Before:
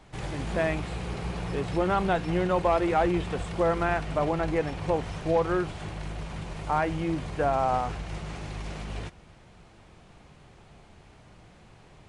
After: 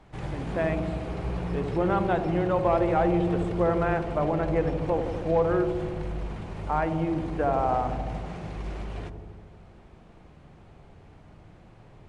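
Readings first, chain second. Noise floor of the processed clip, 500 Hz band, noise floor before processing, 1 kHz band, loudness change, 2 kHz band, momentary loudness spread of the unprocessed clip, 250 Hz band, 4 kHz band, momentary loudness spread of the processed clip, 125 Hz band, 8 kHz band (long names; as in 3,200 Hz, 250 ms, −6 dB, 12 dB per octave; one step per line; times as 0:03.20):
−52 dBFS, +1.5 dB, −54 dBFS, 0.0 dB, +1.0 dB, −2.5 dB, 13 LU, +2.5 dB, −6.0 dB, 13 LU, +2.0 dB, can't be measured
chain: high-shelf EQ 3,000 Hz −10.5 dB
on a send: delay with a low-pass on its return 80 ms, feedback 75%, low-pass 600 Hz, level −4.5 dB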